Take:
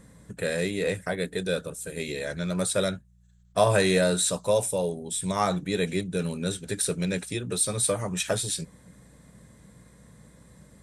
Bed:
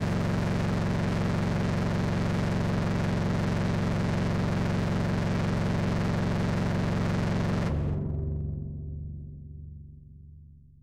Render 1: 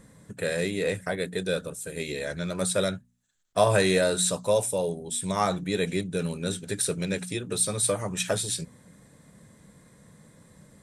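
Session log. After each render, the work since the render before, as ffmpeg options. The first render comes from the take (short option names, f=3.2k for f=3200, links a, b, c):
-af "bandreject=f=60:t=h:w=4,bandreject=f=120:t=h:w=4,bandreject=f=180:t=h:w=4,bandreject=f=240:t=h:w=4"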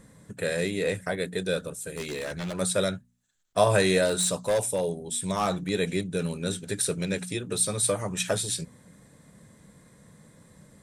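-filter_complex "[0:a]asettb=1/sr,asplit=3[a][b][c];[a]atrim=end=1.954[d];[b]atrim=start=1.95:end=2.59,asetpts=PTS-STARTPTS,afade=t=in:d=0.004:c=qsin,afade=t=out:st=0.636:d=0.004:c=qsin,aeval=exprs='0.0473*(abs(mod(val(0)/0.0473+3,4)-2)-1)':c=same[e];[c]atrim=start=2.586[f];[d][e]acrossfade=d=0.004:c1=hsin:c2=qsin[g];[g][f]acrossfade=d=0.004:c1=qsin:c2=hsin,asettb=1/sr,asplit=3[h][i][j];[h]atrim=end=4.054[k];[i]atrim=start=4.05:end=5.7,asetpts=PTS-STARTPTS,afade=t=in:d=0.004:c=qsin,afade=t=out:st=1.646:d=0.004:c=qsin,asoftclip=type=hard:threshold=-19.5dB[l];[j]atrim=start=5.696[m];[k][l]acrossfade=d=0.004:c1=hsin:c2=qsin[n];[n][m]acrossfade=d=0.004:c1=qsin:c2=hsin"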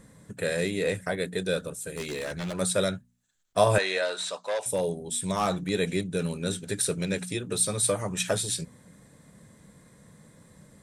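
-filter_complex "[0:a]asettb=1/sr,asplit=3[a][b][c];[a]atrim=end=3.784[d];[b]atrim=start=3.78:end=4.66,asetpts=PTS-STARTPTS,afade=t=in:d=0.004:c=qsin,afade=t=out:st=0.876:d=0.004:c=qsin,highpass=660,lowpass=4.6k[e];[c]atrim=start=4.656[f];[d][e]acrossfade=d=0.004:c1=hsin:c2=qsin[g];[g][f]acrossfade=d=0.004:c1=qsin:c2=hsin"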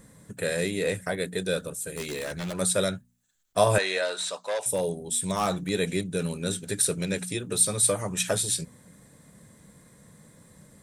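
-af "highshelf=f=10k:g=9"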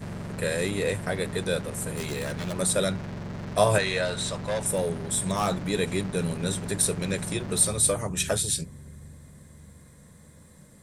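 -filter_complex "[1:a]volume=-8.5dB[a];[0:a][a]amix=inputs=2:normalize=0"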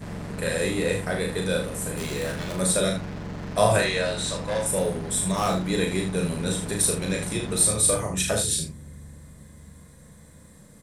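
-filter_complex "[0:a]asplit=2[a][b];[b]adelay=33,volume=-12dB[c];[a][c]amix=inputs=2:normalize=0,aecho=1:1:37|76:0.631|0.422"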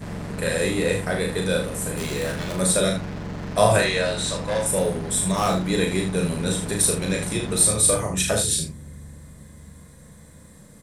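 -af "volume=2.5dB"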